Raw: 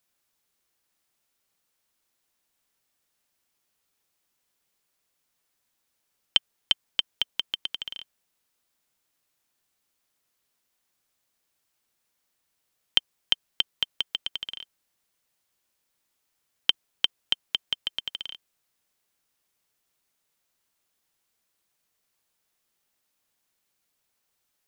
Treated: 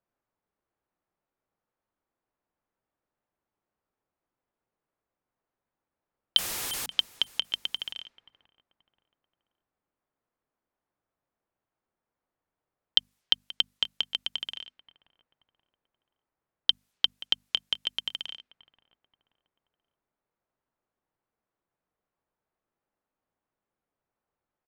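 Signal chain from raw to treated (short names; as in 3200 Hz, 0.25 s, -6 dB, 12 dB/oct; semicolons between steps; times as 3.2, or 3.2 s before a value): 6.37–6.86 infinite clipping; on a send: feedback echo 0.53 s, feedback 42%, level -20.5 dB; on the sum: low-pass opened by the level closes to 1100 Hz, open at -31.5 dBFS; notches 50/100/150/200/250 Hz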